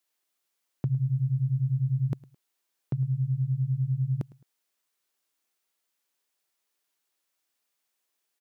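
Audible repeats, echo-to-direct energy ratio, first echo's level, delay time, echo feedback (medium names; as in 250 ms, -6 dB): 2, -20.5 dB, -21.0 dB, 107 ms, 32%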